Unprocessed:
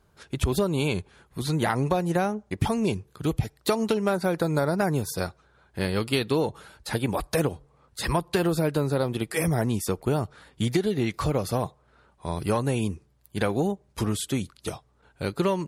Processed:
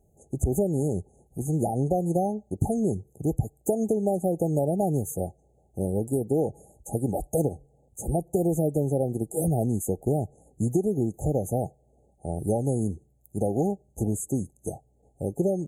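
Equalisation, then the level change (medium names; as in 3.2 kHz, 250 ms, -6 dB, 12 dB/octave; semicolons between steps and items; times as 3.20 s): brick-wall FIR band-stop 850–6200 Hz; 0.0 dB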